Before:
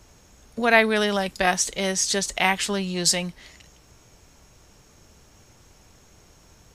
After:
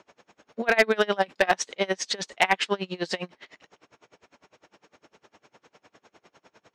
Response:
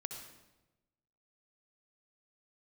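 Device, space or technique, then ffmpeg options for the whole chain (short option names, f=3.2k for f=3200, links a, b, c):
helicopter radio: -af "highpass=320,lowpass=3k,aeval=exprs='val(0)*pow(10,-29*(0.5-0.5*cos(2*PI*9.9*n/s))/20)':c=same,asoftclip=type=hard:threshold=-17.5dB,volume=7.5dB"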